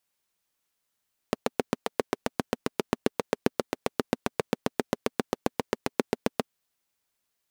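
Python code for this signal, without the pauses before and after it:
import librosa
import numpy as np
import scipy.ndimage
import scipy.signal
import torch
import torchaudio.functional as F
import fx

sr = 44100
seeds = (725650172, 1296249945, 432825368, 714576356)

y = fx.engine_single(sr, seeds[0], length_s=5.18, rpm=900, resonances_hz=(250.0, 410.0))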